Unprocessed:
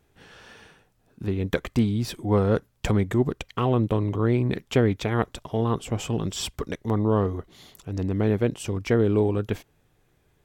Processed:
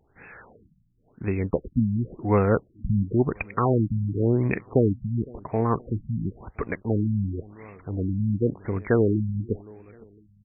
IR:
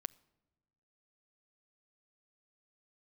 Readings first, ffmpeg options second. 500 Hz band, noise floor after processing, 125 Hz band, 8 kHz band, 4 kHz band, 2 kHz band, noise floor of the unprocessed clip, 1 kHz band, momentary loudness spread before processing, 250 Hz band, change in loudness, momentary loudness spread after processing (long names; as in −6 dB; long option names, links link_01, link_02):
−1.0 dB, −63 dBFS, 0.0 dB, below −40 dB, below −40 dB, −1.5 dB, −66 dBFS, 0.0 dB, 9 LU, −0.5 dB, −0.5 dB, 11 LU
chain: -filter_complex "[0:a]asplit=2[link_01][link_02];[link_02]adelay=509,lowpass=frequency=2300:poles=1,volume=-24dB,asplit=2[link_03][link_04];[link_04]adelay=509,lowpass=frequency=2300:poles=1,volume=0.44,asplit=2[link_05][link_06];[link_06]adelay=509,lowpass=frequency=2300:poles=1,volume=0.44[link_07];[link_01][link_03][link_05][link_07]amix=inputs=4:normalize=0,crystalizer=i=7:c=0,afftfilt=real='re*lt(b*sr/1024,240*pow(2700/240,0.5+0.5*sin(2*PI*0.94*pts/sr)))':imag='im*lt(b*sr/1024,240*pow(2700/240,0.5+0.5*sin(2*PI*0.94*pts/sr)))':win_size=1024:overlap=0.75"